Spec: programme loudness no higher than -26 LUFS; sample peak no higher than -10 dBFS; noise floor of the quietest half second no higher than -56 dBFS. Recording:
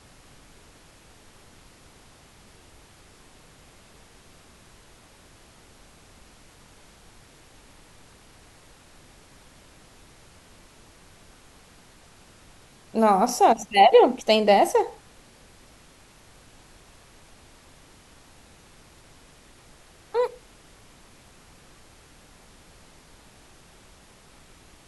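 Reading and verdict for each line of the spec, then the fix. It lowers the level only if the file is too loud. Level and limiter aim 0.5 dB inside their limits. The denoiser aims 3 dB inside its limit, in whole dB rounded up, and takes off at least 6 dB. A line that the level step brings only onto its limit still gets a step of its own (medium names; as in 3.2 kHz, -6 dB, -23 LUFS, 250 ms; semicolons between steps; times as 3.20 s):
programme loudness -20.0 LUFS: fail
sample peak -3.5 dBFS: fail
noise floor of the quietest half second -53 dBFS: fail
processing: trim -6.5 dB; peak limiter -10.5 dBFS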